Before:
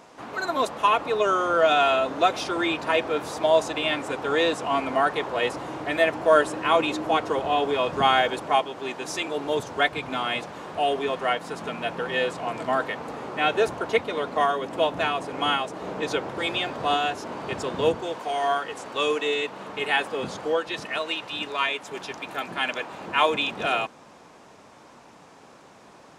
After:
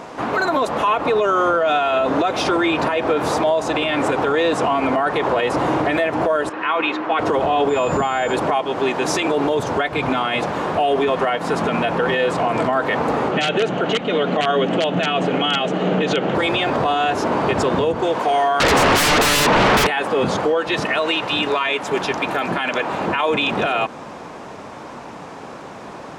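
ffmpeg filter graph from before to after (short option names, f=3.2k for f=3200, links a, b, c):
-filter_complex "[0:a]asettb=1/sr,asplit=3[a][b][c];[a]atrim=end=6.494[d];[b]atrim=start=6.49:end=7.19,asetpts=PTS-STARTPTS,afade=t=in:d=0.004:c=qsin,afade=t=out:st=0.696:d=0.004:c=qsin,highpass=450,lowpass=2.5k,equalizer=f=590:w=0.99:g=-11.5[e];[c]atrim=start=7.186[f];[d][e]acrossfade=d=0.004:c1=hsin:c2=qsin[g];[g][f]acrossfade=d=0.004:c1=qsin:c2=hsin,asettb=1/sr,asplit=3[h][i][j];[h]atrim=end=7.694[k];[i]atrim=start=7.69:end=8.34,asetpts=PTS-STARTPTS,afade=t=in:d=0.004:c=qsin,afade=t=out:st=0.646:d=0.004:c=qsin,acompressor=threshold=-28dB:ratio=4:attack=3.2:release=140:knee=1:detection=peak,aeval=exprs='val(0)+0.00447*sin(2*PI*7100*n/s)':c=same,bandreject=f=3.3k:w=16[l];[j]atrim=start=8.336[m];[k][l]acrossfade=d=0.004:c1=hsin:c2=qsin[n];[n][m]acrossfade=d=0.004:c1=qsin:c2=hsin,asettb=1/sr,asplit=3[o][p][q];[o]atrim=end=13.314[r];[p]atrim=start=13.31:end=16.35,asetpts=PTS-STARTPTS,afade=t=in:d=0.004:c=qsin,afade=t=out:st=3.036:d=0.004:c=qsin,aeval=exprs='(mod(3.98*val(0)+1,2)-1)/3.98':c=same,highpass=f=130:w=0.5412,highpass=f=130:w=1.3066,equalizer=f=180:t=q:w=4:g=7,equalizer=f=990:t=q:w=4:g=-9,equalizer=f=3k:t=q:w=4:g=9,equalizer=f=5.2k:t=q:w=4:g=-7,lowpass=f=7.2k:w=0.5412,lowpass=f=7.2k:w=1.3066[s];[q]atrim=start=16.346[t];[r][s]acrossfade=d=0.004:c1=hsin:c2=qsin[u];[u][t]acrossfade=d=0.004:c1=qsin:c2=hsin,asettb=1/sr,asplit=3[v][w][x];[v]atrim=end=18.604[y];[w]atrim=start=18.6:end=19.87,asetpts=PTS-STARTPTS,afade=t=in:d=0.004:c=qsin,afade=t=out:st=1.266:d=0.004:c=qsin,lowpass=6.1k,acompressor=threshold=-33dB:ratio=2:attack=3.2:release=140:knee=1:detection=peak,aeval=exprs='0.106*sin(PI/2*8.91*val(0)/0.106)':c=same[z];[x]atrim=start=19.866[aa];[y][z]acrossfade=d=0.004:c1=hsin:c2=qsin[ab];[ab][aa]acrossfade=d=0.004:c1=qsin:c2=hsin,highshelf=f=3.4k:g=-9,acompressor=threshold=-26dB:ratio=4,alimiter=level_in=25dB:limit=-1dB:release=50:level=0:latency=1,volume=-9dB"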